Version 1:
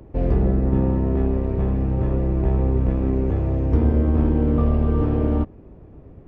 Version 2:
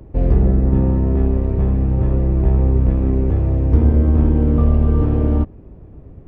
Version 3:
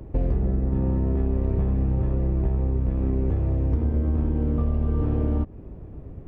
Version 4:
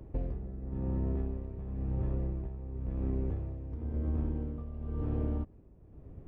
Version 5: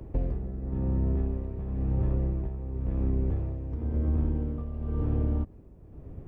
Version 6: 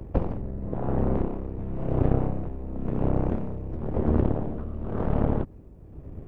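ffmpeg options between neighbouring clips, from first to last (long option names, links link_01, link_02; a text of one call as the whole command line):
ffmpeg -i in.wav -af "lowshelf=frequency=180:gain=6.5" out.wav
ffmpeg -i in.wav -af "acompressor=threshold=-19dB:ratio=10" out.wav
ffmpeg -i in.wav -af "tremolo=f=0.96:d=0.68,volume=-8.5dB" out.wav
ffmpeg -i in.wav -filter_complex "[0:a]acrossover=split=210[link_01][link_02];[link_02]acompressor=threshold=-40dB:ratio=4[link_03];[link_01][link_03]amix=inputs=2:normalize=0,volume=6dB" out.wav
ffmpeg -i in.wav -af "aeval=exprs='0.15*(cos(1*acos(clip(val(0)/0.15,-1,1)))-cos(1*PI/2))+0.0531*(cos(3*acos(clip(val(0)/0.15,-1,1)))-cos(3*PI/2))+0.0106*(cos(7*acos(clip(val(0)/0.15,-1,1)))-cos(7*PI/2))+0.00841*(cos(8*acos(clip(val(0)/0.15,-1,1)))-cos(8*PI/2))':channel_layout=same,volume=8.5dB" out.wav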